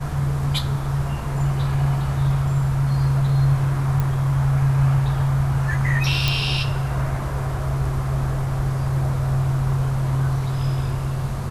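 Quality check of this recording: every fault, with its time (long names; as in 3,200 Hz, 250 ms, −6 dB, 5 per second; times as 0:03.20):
0:04.00: click
0:06.28: click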